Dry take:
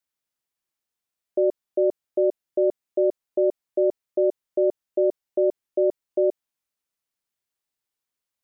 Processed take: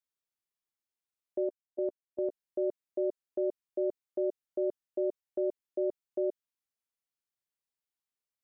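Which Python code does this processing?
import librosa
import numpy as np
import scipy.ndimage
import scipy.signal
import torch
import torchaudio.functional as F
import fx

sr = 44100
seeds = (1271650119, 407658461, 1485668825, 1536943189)

y = fx.level_steps(x, sr, step_db=20, at=(1.43, 2.29), fade=0.02)
y = fx.dynamic_eq(y, sr, hz=730.0, q=2.8, threshold_db=-39.0, ratio=4.0, max_db=-5)
y = y * 10.0 ** (-9.0 / 20.0)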